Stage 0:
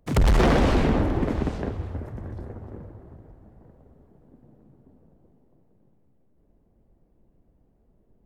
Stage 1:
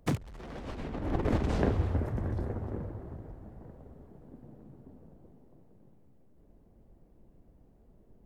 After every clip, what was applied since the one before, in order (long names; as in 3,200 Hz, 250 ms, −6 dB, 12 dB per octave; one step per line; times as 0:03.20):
compressor whose output falls as the input rises −27 dBFS, ratio −0.5
level −3 dB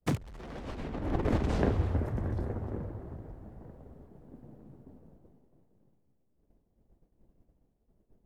downward expander −50 dBFS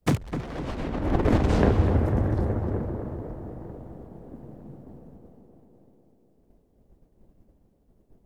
tape delay 251 ms, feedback 77%, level −6 dB, low-pass 1,400 Hz
level +7 dB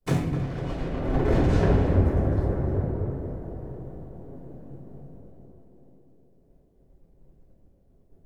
convolution reverb RT60 0.95 s, pre-delay 3 ms, DRR −5 dB
level −8 dB